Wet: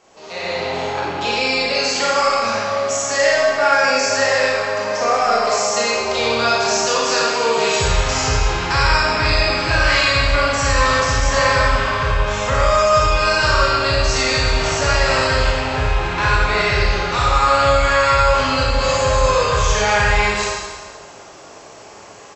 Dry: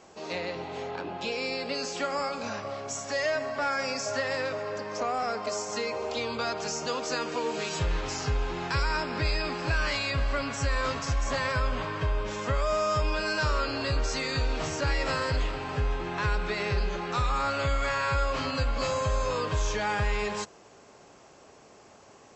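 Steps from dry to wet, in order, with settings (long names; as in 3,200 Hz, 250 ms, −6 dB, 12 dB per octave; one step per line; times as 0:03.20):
low-shelf EQ 480 Hz −4 dB
far-end echo of a speakerphone 340 ms, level −22 dB
four-comb reverb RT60 1.4 s, combs from 27 ms, DRR −4.5 dB
automatic gain control gain up to 10 dB
parametric band 230 Hz −6 dB 0.49 octaves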